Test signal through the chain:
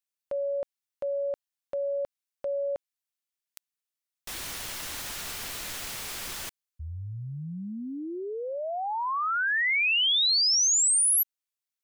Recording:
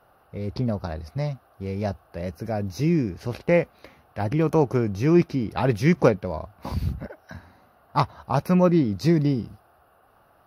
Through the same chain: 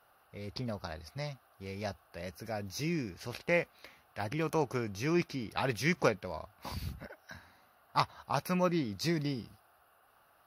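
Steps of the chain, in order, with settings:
tilt shelving filter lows −7 dB
level −7 dB

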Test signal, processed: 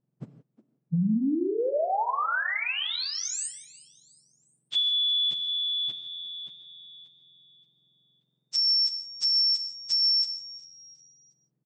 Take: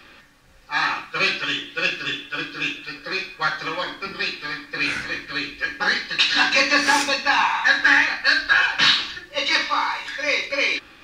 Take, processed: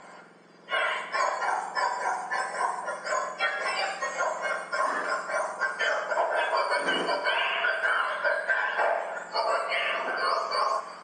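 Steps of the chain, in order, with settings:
frequency axis turned over on the octave scale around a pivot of 1,600 Hz
Chebyshev low-pass filter 8,600 Hz, order 8
dynamic equaliser 420 Hz, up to −7 dB, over −38 dBFS, Q 2.2
downward compressor 6 to 1, threshold −26 dBFS
on a send: echo with shifted repeats 360 ms, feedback 44%, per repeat +86 Hz, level −20 dB
on the sum: reverb whose tail is shaped and stops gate 190 ms flat, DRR 9.5 dB
level +2 dB

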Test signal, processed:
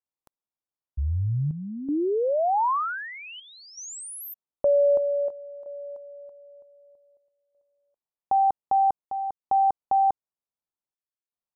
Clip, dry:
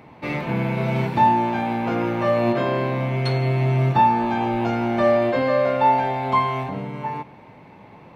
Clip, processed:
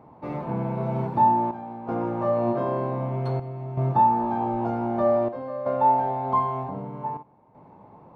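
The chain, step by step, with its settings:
high shelf with overshoot 1,500 Hz −13 dB, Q 1.5
square-wave tremolo 0.53 Hz, depth 65%, duty 80%
level −5 dB

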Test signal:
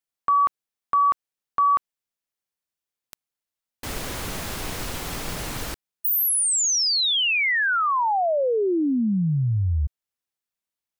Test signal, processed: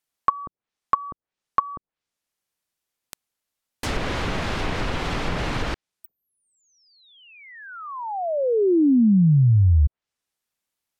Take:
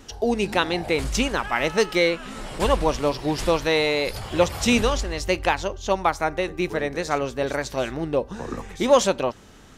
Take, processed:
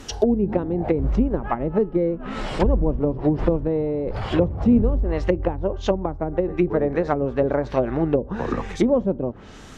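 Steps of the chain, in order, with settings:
treble cut that deepens with the level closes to 310 Hz, closed at −19 dBFS
level +6.5 dB

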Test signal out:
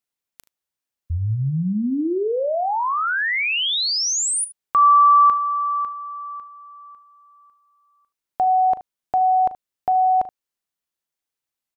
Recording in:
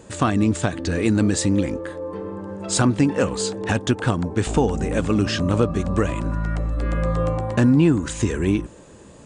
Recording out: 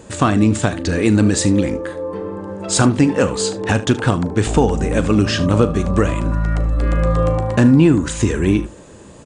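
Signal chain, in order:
ambience of single reflections 38 ms −15 dB, 75 ms −17 dB
level +4.5 dB

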